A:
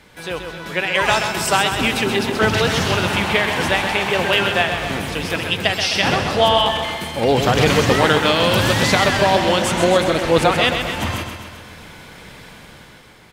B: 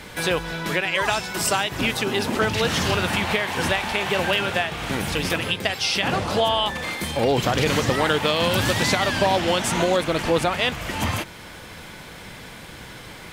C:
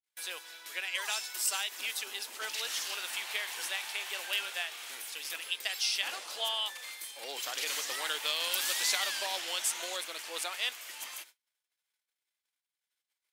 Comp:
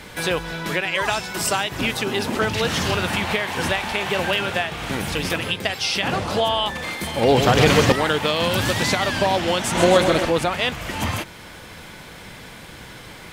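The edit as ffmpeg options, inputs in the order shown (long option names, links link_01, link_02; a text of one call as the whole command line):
ffmpeg -i take0.wav -i take1.wav -filter_complex "[0:a]asplit=2[link_01][link_02];[1:a]asplit=3[link_03][link_04][link_05];[link_03]atrim=end=7.072[link_06];[link_01]atrim=start=7.068:end=7.922[link_07];[link_04]atrim=start=7.918:end=9.752[link_08];[link_02]atrim=start=9.748:end=10.252[link_09];[link_05]atrim=start=10.248[link_10];[link_06][link_07]acrossfade=duration=0.004:curve1=hsin:curve2=hsin[link_11];[link_11][link_08]acrossfade=duration=0.004:curve1=hsin:curve2=hsin[link_12];[link_12][link_09]acrossfade=duration=0.004:curve1=hsin:curve2=hsin[link_13];[link_13][link_10]acrossfade=duration=0.004:curve1=hsin:curve2=hsin" out.wav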